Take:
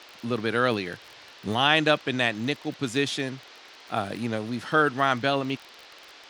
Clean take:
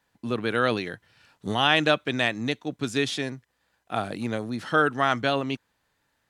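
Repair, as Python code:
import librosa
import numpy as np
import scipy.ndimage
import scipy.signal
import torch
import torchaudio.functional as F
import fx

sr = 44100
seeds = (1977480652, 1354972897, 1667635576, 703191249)

y = fx.fix_declick_ar(x, sr, threshold=6.5)
y = fx.noise_reduce(y, sr, print_start_s=5.65, print_end_s=6.15, reduce_db=24.0)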